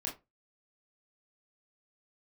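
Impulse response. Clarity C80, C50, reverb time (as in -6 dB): 19.5 dB, 11.5 dB, 0.25 s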